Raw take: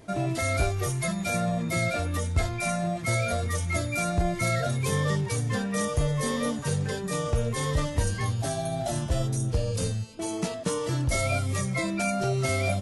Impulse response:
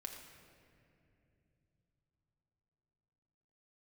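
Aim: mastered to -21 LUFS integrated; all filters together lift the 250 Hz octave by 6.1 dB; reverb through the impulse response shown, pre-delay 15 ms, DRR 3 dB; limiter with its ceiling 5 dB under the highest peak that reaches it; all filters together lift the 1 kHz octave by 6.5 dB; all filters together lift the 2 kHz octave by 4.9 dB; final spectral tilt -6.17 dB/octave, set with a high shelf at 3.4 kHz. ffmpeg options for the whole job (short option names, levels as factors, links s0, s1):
-filter_complex "[0:a]equalizer=f=250:t=o:g=8.5,equalizer=f=1000:t=o:g=8,equalizer=f=2000:t=o:g=5.5,highshelf=f=3400:g=-5.5,alimiter=limit=0.178:level=0:latency=1,asplit=2[s0][s1];[1:a]atrim=start_sample=2205,adelay=15[s2];[s1][s2]afir=irnorm=-1:irlink=0,volume=1[s3];[s0][s3]amix=inputs=2:normalize=0,volume=1.33"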